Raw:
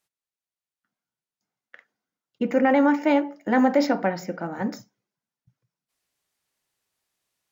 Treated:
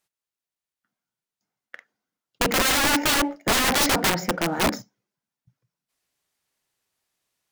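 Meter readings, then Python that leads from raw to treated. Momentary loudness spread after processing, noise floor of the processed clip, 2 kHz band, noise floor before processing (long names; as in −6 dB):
7 LU, below −85 dBFS, +6.5 dB, below −85 dBFS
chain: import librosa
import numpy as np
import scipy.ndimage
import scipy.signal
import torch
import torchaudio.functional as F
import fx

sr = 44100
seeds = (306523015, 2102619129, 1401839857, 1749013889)

y = fx.leveller(x, sr, passes=1)
y = (np.mod(10.0 ** (18.0 / 20.0) * y + 1.0, 2.0) - 1.0) / 10.0 ** (18.0 / 20.0)
y = y * librosa.db_to_amplitude(3.0)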